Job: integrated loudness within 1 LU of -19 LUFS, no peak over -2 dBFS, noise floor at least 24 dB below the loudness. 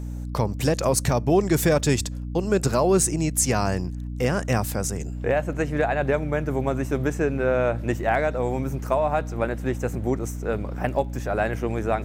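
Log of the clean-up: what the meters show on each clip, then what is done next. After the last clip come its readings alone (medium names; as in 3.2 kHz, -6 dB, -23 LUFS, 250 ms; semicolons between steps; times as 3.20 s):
tick rate 19 per s; hum 60 Hz; highest harmonic 300 Hz; hum level -29 dBFS; loudness -24.0 LUFS; peak level -8.5 dBFS; loudness target -19.0 LUFS
-> de-click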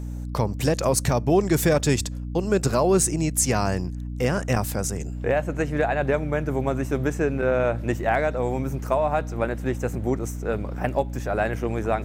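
tick rate 0.42 per s; hum 60 Hz; highest harmonic 300 Hz; hum level -29 dBFS
-> hum notches 60/120/180/240/300 Hz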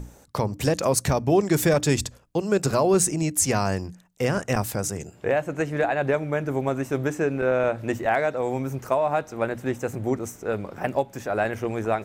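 hum not found; loudness -25.0 LUFS; peak level -9.0 dBFS; loudness target -19.0 LUFS
-> trim +6 dB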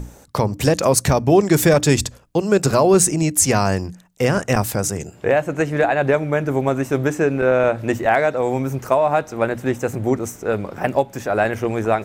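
loudness -18.5 LUFS; peak level -3.0 dBFS; noise floor -47 dBFS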